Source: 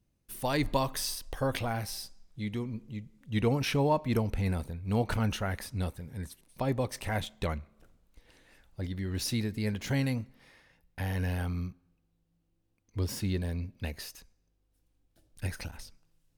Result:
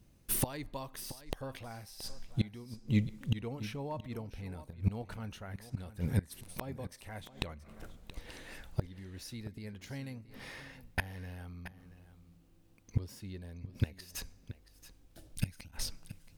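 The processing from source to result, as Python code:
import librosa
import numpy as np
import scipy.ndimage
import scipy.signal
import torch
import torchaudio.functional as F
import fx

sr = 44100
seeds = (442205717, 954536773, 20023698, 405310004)

y = fx.gate_flip(x, sr, shuts_db=-29.0, range_db=-25)
y = fx.spec_box(y, sr, start_s=15.36, length_s=0.36, low_hz=320.0, high_hz=2000.0, gain_db=-9)
y = y + 10.0 ** (-14.5 / 20.0) * np.pad(y, (int(676 * sr / 1000.0), 0))[:len(y)]
y = F.gain(torch.from_numpy(y), 11.5).numpy()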